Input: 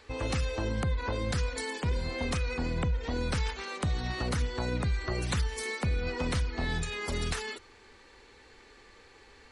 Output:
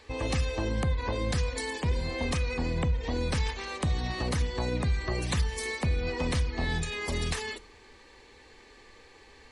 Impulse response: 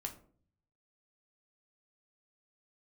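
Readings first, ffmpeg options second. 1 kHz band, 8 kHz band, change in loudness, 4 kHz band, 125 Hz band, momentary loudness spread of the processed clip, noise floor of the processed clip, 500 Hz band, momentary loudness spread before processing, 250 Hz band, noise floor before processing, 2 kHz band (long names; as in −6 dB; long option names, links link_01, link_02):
+1.0 dB, +1.5 dB, +1.5 dB, +1.5 dB, +2.0 dB, 2 LU, −55 dBFS, +2.0 dB, 2 LU, +1.5 dB, −56 dBFS, +1.0 dB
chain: -filter_complex "[0:a]bandreject=frequency=1400:width=5.9,asplit=2[link_01][link_02];[1:a]atrim=start_sample=2205,asetrate=34839,aresample=44100[link_03];[link_02][link_03]afir=irnorm=-1:irlink=0,volume=-11dB[link_04];[link_01][link_04]amix=inputs=2:normalize=0"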